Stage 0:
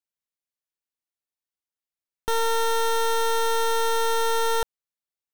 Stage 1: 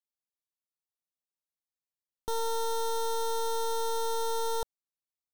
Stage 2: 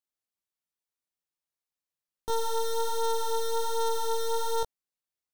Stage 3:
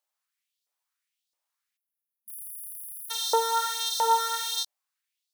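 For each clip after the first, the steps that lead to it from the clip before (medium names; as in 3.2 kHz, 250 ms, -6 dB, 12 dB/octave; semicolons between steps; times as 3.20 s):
high-order bell 2.1 kHz -12.5 dB 1.2 oct; trim -7 dB
chorus 1.3 Hz, delay 17.5 ms, depth 2.8 ms; trim +4 dB
spectral selection erased 1.77–3.11 s, 220–9600 Hz; LFO high-pass saw up 1.5 Hz 560–4600 Hz; trim +6 dB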